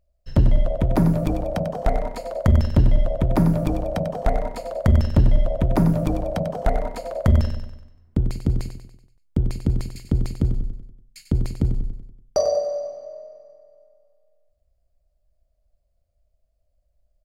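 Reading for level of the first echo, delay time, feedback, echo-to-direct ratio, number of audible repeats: -9.0 dB, 95 ms, 49%, -8.0 dB, 5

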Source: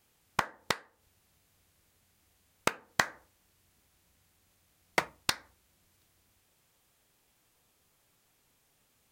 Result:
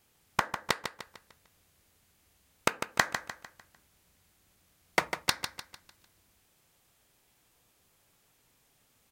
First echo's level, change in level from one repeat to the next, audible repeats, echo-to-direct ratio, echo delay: -8.5 dB, -7.5 dB, 4, -7.5 dB, 0.15 s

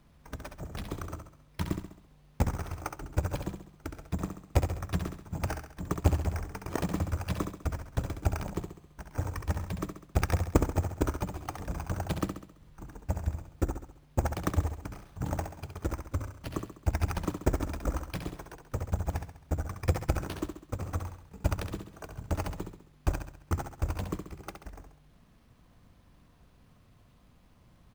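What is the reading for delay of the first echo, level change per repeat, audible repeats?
67 ms, -6.5 dB, 5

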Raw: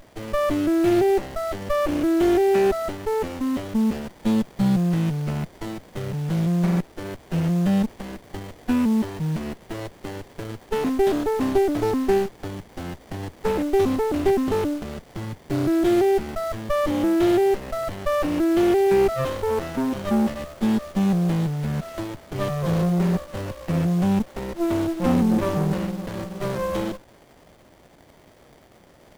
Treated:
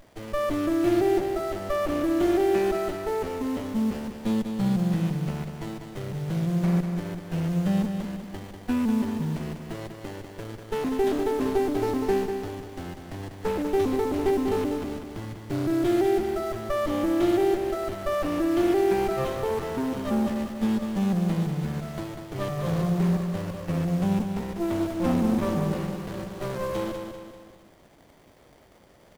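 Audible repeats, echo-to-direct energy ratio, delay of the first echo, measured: 4, -5.5 dB, 0.195 s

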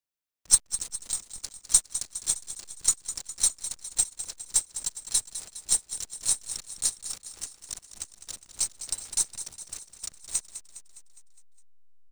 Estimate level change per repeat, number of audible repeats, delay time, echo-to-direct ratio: -5.0 dB, 5, 0.205 s, -10.5 dB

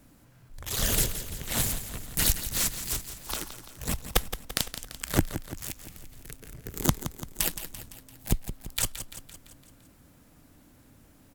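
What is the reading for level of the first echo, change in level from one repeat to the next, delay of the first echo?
-11.0 dB, -5.0 dB, 0.17 s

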